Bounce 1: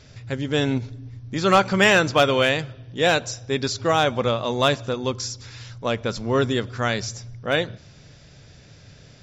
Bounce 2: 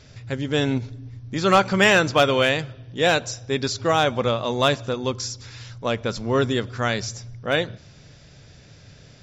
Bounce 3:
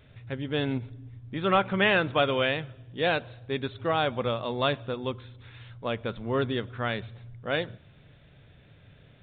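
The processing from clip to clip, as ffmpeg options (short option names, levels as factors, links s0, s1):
-af anull
-af "aresample=8000,aresample=44100,volume=0.473"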